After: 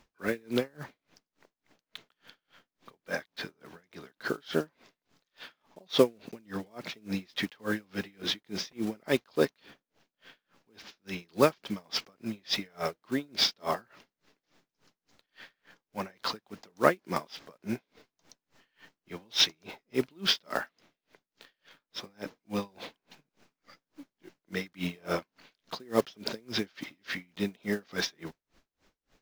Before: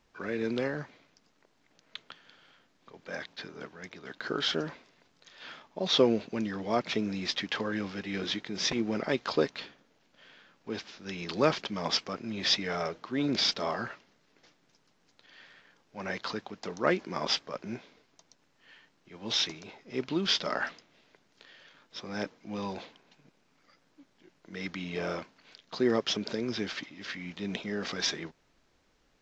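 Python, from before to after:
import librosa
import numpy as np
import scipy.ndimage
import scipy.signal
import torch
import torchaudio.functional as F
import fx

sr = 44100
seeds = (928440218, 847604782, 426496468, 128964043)

y = fx.block_float(x, sr, bits=5)
y = fx.rider(y, sr, range_db=4, speed_s=2.0)
y = y * 10.0 ** (-34 * (0.5 - 0.5 * np.cos(2.0 * np.pi * 3.5 * np.arange(len(y)) / sr)) / 20.0)
y = y * librosa.db_to_amplitude(5.0)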